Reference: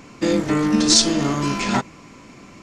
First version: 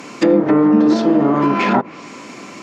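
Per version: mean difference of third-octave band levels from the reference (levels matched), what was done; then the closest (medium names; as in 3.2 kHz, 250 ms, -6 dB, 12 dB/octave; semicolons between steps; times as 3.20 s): 7.0 dB: low-pass that closes with the level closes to 920 Hz, closed at -16.5 dBFS; high-pass 250 Hz 12 dB/octave; in parallel at +1 dB: peak limiter -18.5 dBFS, peak gain reduction 8 dB; on the sum: trim +4.5 dB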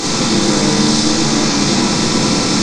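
11.0 dB: spectral levelling over time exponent 0.2; peak limiter -7.5 dBFS, peak gain reduction 9 dB; simulated room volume 1500 m³, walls mixed, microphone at 3.7 m; trim -4 dB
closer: first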